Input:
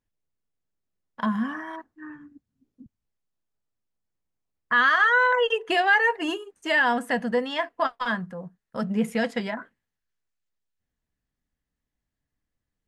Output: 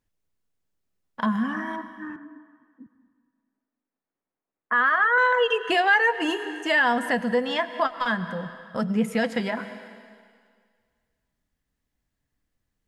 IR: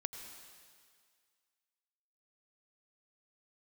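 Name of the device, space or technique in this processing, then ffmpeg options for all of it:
ducked reverb: -filter_complex "[0:a]asplit=3[link_01][link_02][link_03];[1:a]atrim=start_sample=2205[link_04];[link_02][link_04]afir=irnorm=-1:irlink=0[link_05];[link_03]apad=whole_len=567894[link_06];[link_05][link_06]sidechaincompress=threshold=-31dB:ratio=3:attack=5.7:release=182,volume=1.5dB[link_07];[link_01][link_07]amix=inputs=2:normalize=0,asettb=1/sr,asplit=3[link_08][link_09][link_10];[link_08]atrim=end=2.164[link_11];[link_09]atrim=start=2.16:end=5.18,asetpts=PTS-STARTPTS,afade=type=in:duration=0.004:curve=qsin,afade=type=out:start_time=3.016:duration=0.004:curve=qsin,acrossover=split=210 2200:gain=0.0891 1 0.112[link_12][link_13][link_14];[link_12][link_13][link_14]amix=inputs=3:normalize=0[link_15];[link_10]atrim=start=5.176[link_16];[link_11][link_15]acrossfade=duration=0.004:curve1=hsin:curve2=qsin[link_17];[link_17][link_16]acrossfade=duration=0.004:curve1=qsin:curve2=hsin,volume=-1.5dB"

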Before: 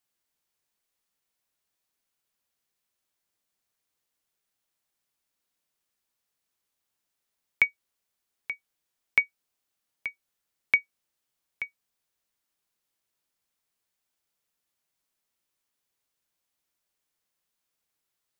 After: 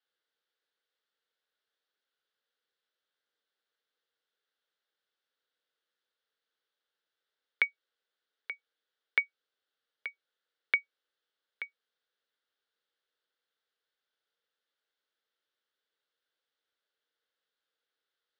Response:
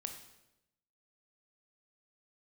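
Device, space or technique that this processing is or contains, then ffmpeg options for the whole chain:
phone earpiece: -af "highpass=450,equalizer=frequency=470:width_type=q:width=4:gain=8,equalizer=frequency=700:width_type=q:width=4:gain=-6,equalizer=frequency=1000:width_type=q:width=4:gain=-8,equalizer=frequency=1500:width_type=q:width=4:gain=6,equalizer=frequency=2400:width_type=q:width=4:gain=-8,equalizer=frequency=3500:width_type=q:width=4:gain=4,lowpass=frequency=4200:width=0.5412,lowpass=frequency=4200:width=1.3066"

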